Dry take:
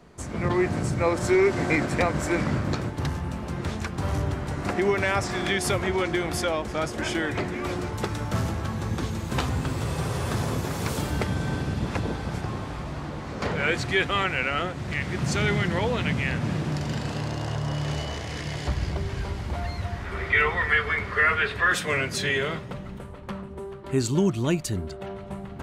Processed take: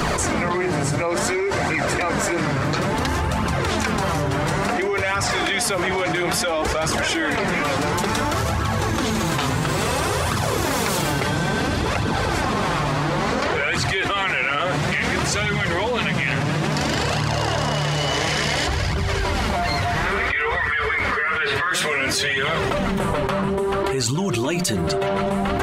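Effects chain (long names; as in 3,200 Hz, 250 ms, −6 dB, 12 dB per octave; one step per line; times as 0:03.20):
low-shelf EQ 340 Hz −8 dB
mains-hum notches 60/120/180/240/300/360 Hz
flanger 0.58 Hz, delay 0.6 ms, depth 6.9 ms, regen +20%
envelope flattener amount 100%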